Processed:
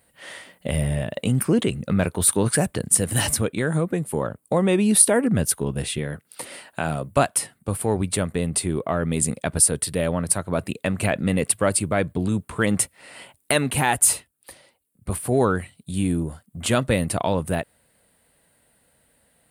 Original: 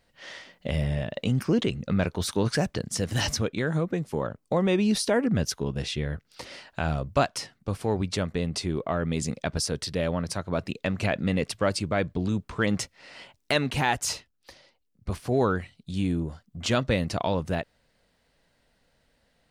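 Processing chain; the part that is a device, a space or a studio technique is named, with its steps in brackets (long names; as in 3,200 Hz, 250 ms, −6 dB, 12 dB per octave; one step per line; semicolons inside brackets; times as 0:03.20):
0:05.98–0:07.16: high-pass filter 140 Hz 12 dB per octave
budget condenser microphone (high-pass filter 61 Hz; high shelf with overshoot 7,400 Hz +10 dB, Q 3)
level +4 dB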